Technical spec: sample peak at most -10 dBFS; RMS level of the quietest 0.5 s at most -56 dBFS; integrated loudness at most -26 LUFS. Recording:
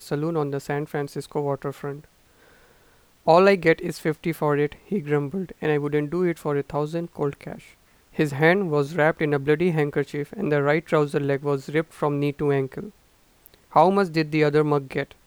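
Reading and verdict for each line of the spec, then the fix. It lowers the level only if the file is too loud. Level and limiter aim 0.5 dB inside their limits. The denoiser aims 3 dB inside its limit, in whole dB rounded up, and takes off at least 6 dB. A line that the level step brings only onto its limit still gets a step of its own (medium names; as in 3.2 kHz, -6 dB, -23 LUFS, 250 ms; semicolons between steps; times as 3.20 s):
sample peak -4.5 dBFS: fail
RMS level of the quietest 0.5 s -58 dBFS: pass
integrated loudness -23.5 LUFS: fail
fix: trim -3 dB; peak limiter -10.5 dBFS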